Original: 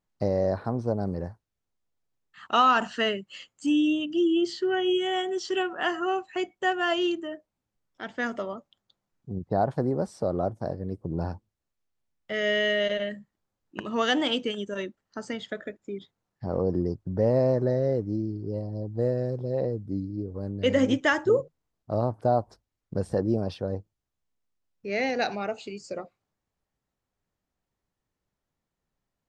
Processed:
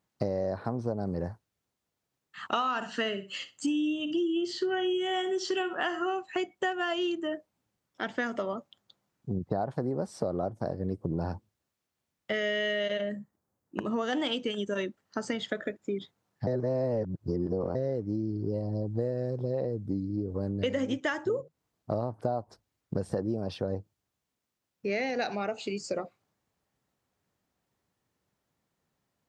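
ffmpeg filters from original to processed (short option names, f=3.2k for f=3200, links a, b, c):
-filter_complex "[0:a]asettb=1/sr,asplit=3[a][b][c];[a]atrim=end=2.504[d];[b]atrim=start=2.5:end=6.14,asetpts=PTS-STARTPTS,afade=t=in:d=0.004:c=qsin,afade=t=out:st=3.636:d=0.004:c=qsin,aecho=1:1:63|126:0.188|0.0301,atrim=end_sample=160524[e];[c]atrim=start=6.136[f];[d][e]acrossfade=d=0.004:c1=hsin:c2=qsin[g];[g][f]acrossfade=d=0.004:c1=qsin:c2=hsin,asettb=1/sr,asplit=3[h][i][j];[h]atrim=end=13.014[k];[i]atrim=start=13.01:end=14.13,asetpts=PTS-STARTPTS,afade=t=in:d=0.004:c=qsin,afade=t=out:st=1.116:d=0.004:c=qsin,equalizer=f=3.1k:w=0.58:g=-10.5[l];[j]atrim=start=14.126[m];[k][l]acrossfade=d=0.004:c1=hsin:c2=qsin[n];[n][m]acrossfade=d=0.004:c1=qsin:c2=hsin,asplit=3[o][p][q];[o]atrim=end=16.472[r];[p]atrim=start=16.468:end=17.752,asetpts=PTS-STARTPTS,areverse[s];[q]atrim=start=17.748[t];[r][s]acrossfade=d=0.004:c1=hsin:c2=hsin[u];[u][t]acrossfade=d=0.004:c1=hsin:c2=hsin,highpass=85,acompressor=threshold=-33dB:ratio=6,volume=5.5dB"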